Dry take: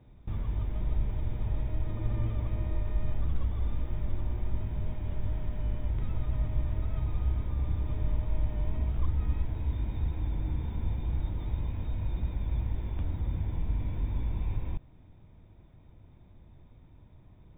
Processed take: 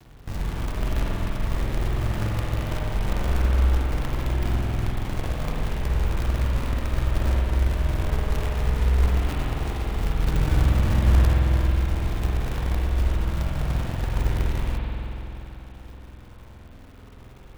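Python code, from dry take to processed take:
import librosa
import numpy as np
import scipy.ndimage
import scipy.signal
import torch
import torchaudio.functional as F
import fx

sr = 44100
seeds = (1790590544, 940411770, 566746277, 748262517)

y = fx.peak_eq(x, sr, hz=94.0, db=7.0, octaves=2.9, at=(10.26, 11.35))
y = fx.quant_companded(y, sr, bits=4)
y = fx.rev_spring(y, sr, rt60_s=3.5, pass_ms=(47,), chirp_ms=50, drr_db=-3.0)
y = y * 10.0 ** (2.0 / 20.0)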